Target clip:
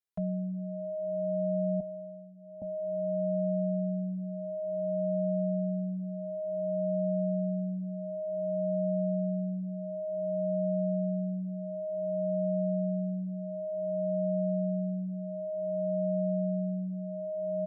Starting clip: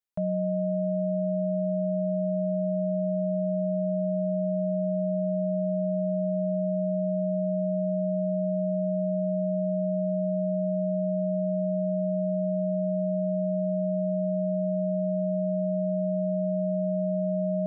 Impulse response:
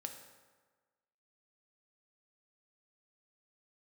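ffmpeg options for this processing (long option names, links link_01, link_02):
-filter_complex "[0:a]asettb=1/sr,asplit=3[link_01][link_02][link_03];[link_01]atrim=end=1.804[link_04];[link_02]atrim=start=1.8:end=2.62,asetpts=PTS-STARTPTS,afade=type=in:duration=0.004:curve=qsin,afade=type=out:start_time=0.816:duration=0.004:curve=qsin,bandpass=frequency=490:width_type=q:width=3.2:csg=0[link_05];[link_03]atrim=start=2.616[link_06];[link_04][link_05]acrossfade=duration=0.004:curve1=hsin:curve2=qsin[link_07];[link_07][link_06]acrossfade=duration=0.004:curve1=qsin:curve2=hsin,asplit=2[link_08][link_09];[link_09]adelay=2.5,afreqshift=0.55[link_10];[link_08][link_10]amix=inputs=2:normalize=1,volume=-1.5dB"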